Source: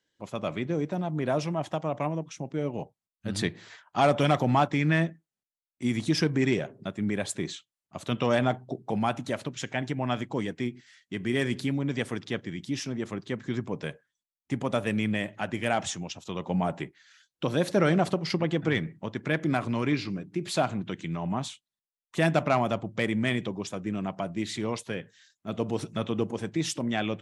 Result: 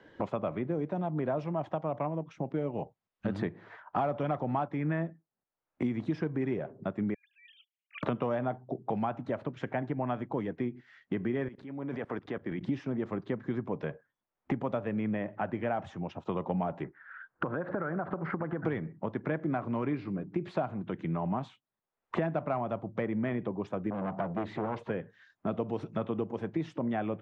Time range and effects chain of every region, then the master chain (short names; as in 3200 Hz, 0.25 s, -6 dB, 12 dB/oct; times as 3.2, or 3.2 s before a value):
7.14–8.03 sine-wave speech + steep high-pass 2500 Hz + negative-ratio compressor -57 dBFS
11.48–12.61 low shelf 240 Hz -11 dB + notches 50/100/150 Hz + level quantiser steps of 22 dB
16.84–18.65 synth low-pass 1500 Hz, resonance Q 3.7 + compressor 5:1, threshold -33 dBFS
23.9–24.9 G.711 law mismatch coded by mu + high shelf 6600 Hz -6.5 dB + core saturation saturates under 980 Hz
whole clip: LPF 1100 Hz 12 dB/oct; low shelf 450 Hz -6 dB; three-band squash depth 100%